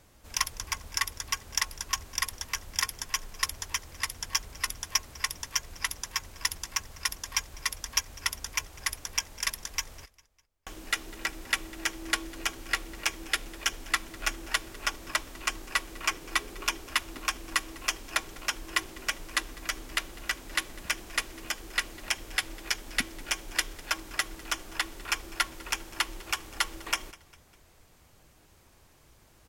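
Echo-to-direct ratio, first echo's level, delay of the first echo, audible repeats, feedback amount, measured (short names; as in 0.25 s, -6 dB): -21.0 dB, -22.0 dB, 0.201 s, 2, 46%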